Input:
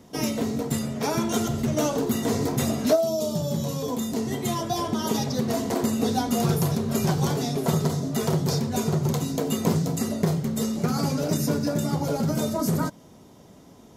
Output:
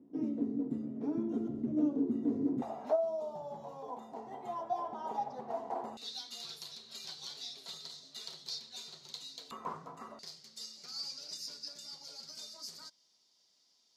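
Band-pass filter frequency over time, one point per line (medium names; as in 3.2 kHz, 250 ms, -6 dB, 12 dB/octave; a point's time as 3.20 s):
band-pass filter, Q 5.7
290 Hz
from 2.62 s 820 Hz
from 5.97 s 4.1 kHz
from 9.51 s 1.1 kHz
from 10.19 s 4.7 kHz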